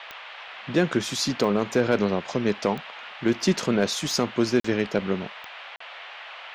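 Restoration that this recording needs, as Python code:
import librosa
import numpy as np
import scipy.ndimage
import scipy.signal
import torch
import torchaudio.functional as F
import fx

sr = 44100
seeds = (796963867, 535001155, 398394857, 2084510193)

y = fx.fix_declip(x, sr, threshold_db=-11.5)
y = fx.fix_declick_ar(y, sr, threshold=10.0)
y = fx.fix_interpolate(y, sr, at_s=(4.6, 5.76), length_ms=44.0)
y = fx.noise_reduce(y, sr, print_start_s=0.0, print_end_s=0.5, reduce_db=28.0)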